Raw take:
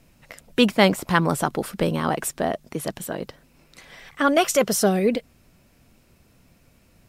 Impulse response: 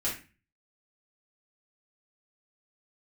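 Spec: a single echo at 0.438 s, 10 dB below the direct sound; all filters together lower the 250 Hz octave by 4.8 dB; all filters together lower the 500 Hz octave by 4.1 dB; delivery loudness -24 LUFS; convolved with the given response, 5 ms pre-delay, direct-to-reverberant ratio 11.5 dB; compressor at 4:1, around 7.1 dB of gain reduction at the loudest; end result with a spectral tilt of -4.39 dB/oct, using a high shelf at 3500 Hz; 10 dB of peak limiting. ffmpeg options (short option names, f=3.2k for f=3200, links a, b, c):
-filter_complex "[0:a]equalizer=f=250:t=o:g=-5.5,equalizer=f=500:t=o:g=-3.5,highshelf=f=3.5k:g=-7.5,acompressor=threshold=-24dB:ratio=4,alimiter=limit=-21.5dB:level=0:latency=1,aecho=1:1:438:0.316,asplit=2[a][b];[1:a]atrim=start_sample=2205,adelay=5[c];[b][c]afir=irnorm=-1:irlink=0,volume=-17.5dB[d];[a][d]amix=inputs=2:normalize=0,volume=9dB"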